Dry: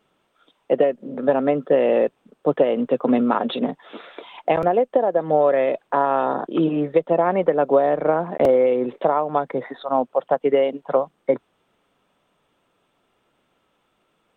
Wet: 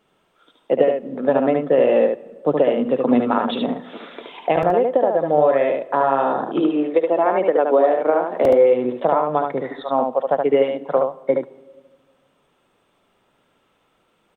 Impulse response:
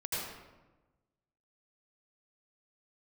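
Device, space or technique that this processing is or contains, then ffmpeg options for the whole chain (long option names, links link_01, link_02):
ducked reverb: -filter_complex "[0:a]asplit=3[link_01][link_02][link_03];[link_01]afade=type=out:start_time=6.59:duration=0.02[link_04];[link_02]highpass=frequency=250:width=0.5412,highpass=frequency=250:width=1.3066,afade=type=in:start_time=6.59:duration=0.02,afade=type=out:start_time=8.43:duration=0.02[link_05];[link_03]afade=type=in:start_time=8.43:duration=0.02[link_06];[link_04][link_05][link_06]amix=inputs=3:normalize=0,asplit=3[link_07][link_08][link_09];[1:a]atrim=start_sample=2205[link_10];[link_08][link_10]afir=irnorm=-1:irlink=0[link_11];[link_09]apad=whole_len=633485[link_12];[link_11][link_12]sidechaincompress=threshold=-27dB:ratio=8:attack=6.3:release=1190,volume=-10.5dB[link_13];[link_07][link_13]amix=inputs=2:normalize=0,aecho=1:1:73:0.631"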